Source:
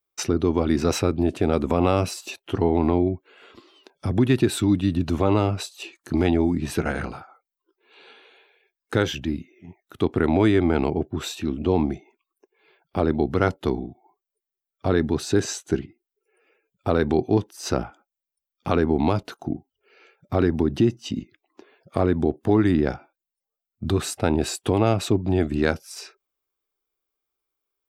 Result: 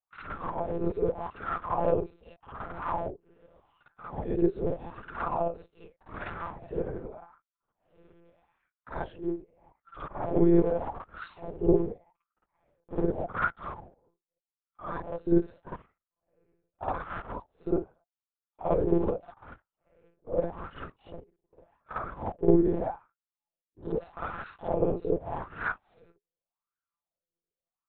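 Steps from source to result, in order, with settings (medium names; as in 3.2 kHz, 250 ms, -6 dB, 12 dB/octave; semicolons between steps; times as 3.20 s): cycle switcher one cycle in 3, muted; wah-wah 0.83 Hz 380–1400 Hz, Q 6.5; vibrato 1.8 Hz 75 cents; monotone LPC vocoder at 8 kHz 170 Hz; on a send: reverse echo 53 ms -7 dB; on the sum: trim +4.5 dB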